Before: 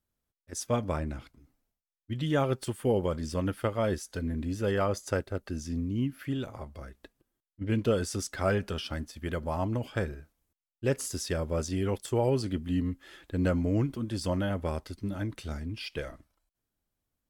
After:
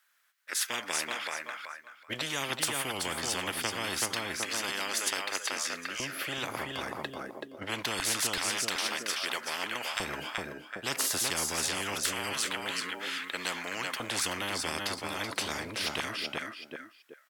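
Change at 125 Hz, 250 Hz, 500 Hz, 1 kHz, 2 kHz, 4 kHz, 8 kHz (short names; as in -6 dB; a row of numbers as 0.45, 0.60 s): -15.5, -10.5, -8.5, +2.0, +8.5, +11.5, +10.0 dB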